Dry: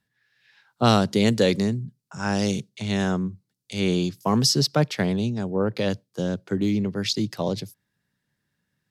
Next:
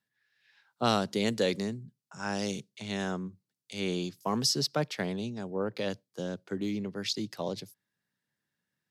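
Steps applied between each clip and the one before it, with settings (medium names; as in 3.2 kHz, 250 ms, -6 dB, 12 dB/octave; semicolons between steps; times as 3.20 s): high-pass 250 Hz 6 dB/octave; trim -6.5 dB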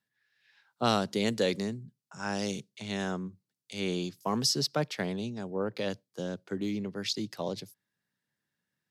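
no audible change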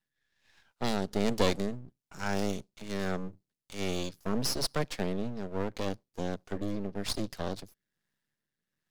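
rotary cabinet horn 1.2 Hz; half-wave rectifier; trim +5 dB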